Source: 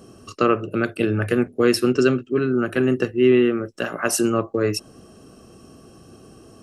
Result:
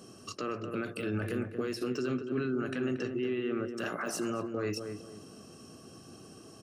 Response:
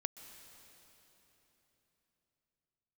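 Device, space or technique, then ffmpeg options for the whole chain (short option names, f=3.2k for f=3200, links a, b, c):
broadcast voice chain: -filter_complex "[0:a]asettb=1/sr,asplit=3[a][b][c];[a]atrim=end=2.714[d];[b]atrim=start=2.71:end=3.68,asetpts=PTS-STARTPTS,afade=t=in:d=0.004:c=qsin,afade=t=out:st=0.966:d=0.004:c=qsin,lowpass=f=7.5k:w=0.5412,lowpass=f=7.5k:w=1.3066[e];[c]atrim=start=3.676[f];[d][e]acrossfade=d=0.004:c1=hsin:c2=qsin[g];[g][f]acrossfade=d=0.004:c1=qsin:c2=hsin,highpass=120,equalizer=f=420:t=o:w=2.7:g=-3,deesser=0.9,acompressor=threshold=-23dB:ratio=4,equalizer=f=5.5k:t=o:w=1.3:g=4.5,alimiter=limit=-22dB:level=0:latency=1:release=20,asplit=2[h][i];[i]adelay=230,lowpass=f=1.2k:p=1,volume=-6dB,asplit=2[j][k];[k]adelay=230,lowpass=f=1.2k:p=1,volume=0.33,asplit=2[l][m];[m]adelay=230,lowpass=f=1.2k:p=1,volume=0.33,asplit=2[n][o];[o]adelay=230,lowpass=f=1.2k:p=1,volume=0.33[p];[h][j][l][n][p]amix=inputs=5:normalize=0,volume=-3.5dB"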